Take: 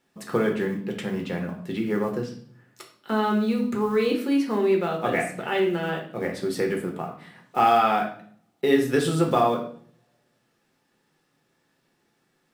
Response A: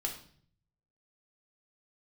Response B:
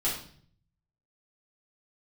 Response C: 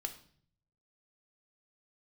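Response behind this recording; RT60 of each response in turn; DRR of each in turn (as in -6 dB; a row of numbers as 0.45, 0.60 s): A; 0.55, 0.55, 0.55 s; 0.5, -8.0, 6.0 dB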